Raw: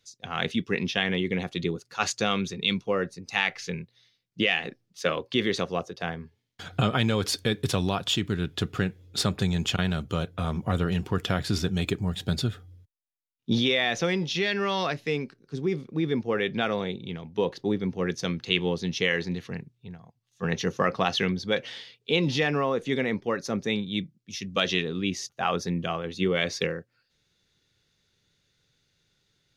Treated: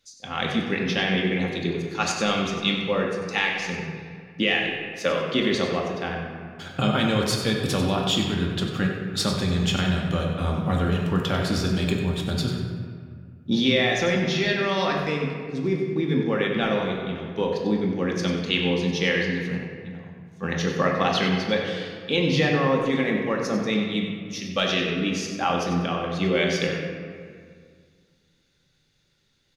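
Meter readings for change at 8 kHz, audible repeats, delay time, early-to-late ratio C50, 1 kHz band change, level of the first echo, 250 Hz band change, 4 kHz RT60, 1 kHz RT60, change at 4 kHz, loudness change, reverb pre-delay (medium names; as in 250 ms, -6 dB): +2.0 dB, 1, 95 ms, 2.0 dB, +3.5 dB, -9.5 dB, +4.5 dB, 1.2 s, 2.0 s, +2.5 dB, +3.5 dB, 3 ms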